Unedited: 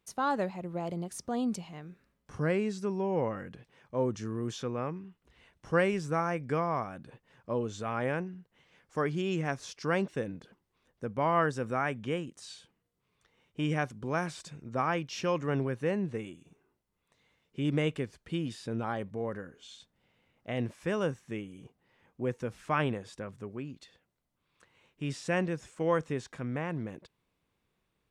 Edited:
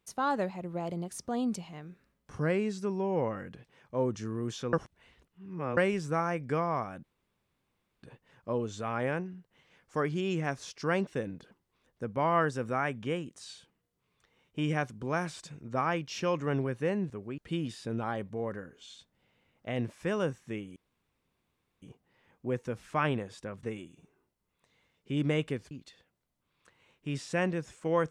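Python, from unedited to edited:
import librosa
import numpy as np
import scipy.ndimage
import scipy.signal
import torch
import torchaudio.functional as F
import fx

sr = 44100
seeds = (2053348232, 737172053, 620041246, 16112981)

y = fx.edit(x, sr, fx.reverse_span(start_s=4.73, length_s=1.04),
    fx.insert_room_tone(at_s=7.04, length_s=0.99),
    fx.swap(start_s=16.11, length_s=2.08, other_s=23.38, other_length_s=0.28),
    fx.insert_room_tone(at_s=21.57, length_s=1.06), tone=tone)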